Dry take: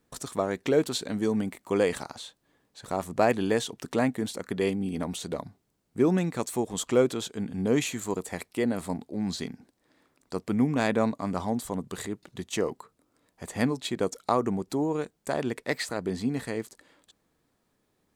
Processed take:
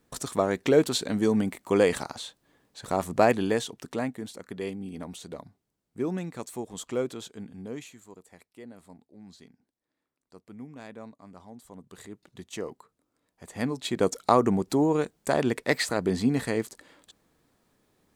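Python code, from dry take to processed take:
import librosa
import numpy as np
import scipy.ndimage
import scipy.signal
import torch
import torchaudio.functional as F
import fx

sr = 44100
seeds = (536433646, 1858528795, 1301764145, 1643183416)

y = fx.gain(x, sr, db=fx.line((3.16, 3.0), (4.23, -7.0), (7.34, -7.0), (8.05, -18.5), (11.49, -18.5), (12.26, -7.0), (13.45, -7.0), (14.08, 4.5)))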